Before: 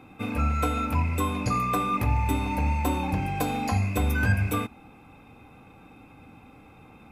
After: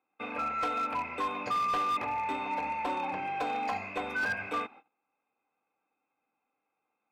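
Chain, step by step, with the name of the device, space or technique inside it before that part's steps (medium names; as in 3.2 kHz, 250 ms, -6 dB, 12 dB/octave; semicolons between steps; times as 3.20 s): walkie-talkie (band-pass 520–2700 Hz; hard clipper -26.5 dBFS, distortion -15 dB; gate -50 dBFS, range -27 dB)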